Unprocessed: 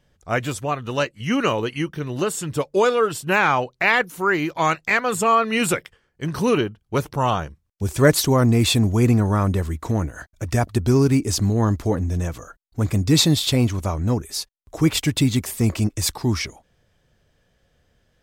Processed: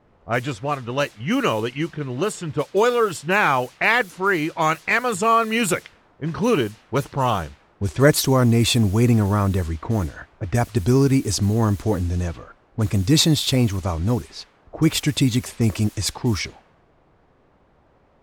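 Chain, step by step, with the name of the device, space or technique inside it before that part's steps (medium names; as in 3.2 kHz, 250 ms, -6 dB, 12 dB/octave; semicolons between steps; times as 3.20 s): cassette deck with a dynamic noise filter (white noise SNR 24 dB; level-controlled noise filter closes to 650 Hz, open at -17 dBFS)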